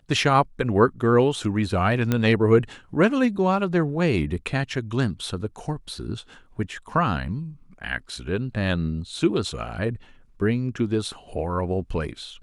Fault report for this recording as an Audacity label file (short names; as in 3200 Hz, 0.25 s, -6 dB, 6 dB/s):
2.120000	2.120000	pop -9 dBFS